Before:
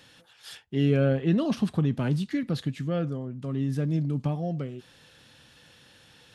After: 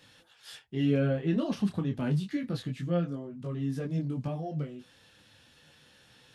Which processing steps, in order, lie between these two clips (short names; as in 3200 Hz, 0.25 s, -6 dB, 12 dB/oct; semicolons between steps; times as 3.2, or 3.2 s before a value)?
detuned doubles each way 10 cents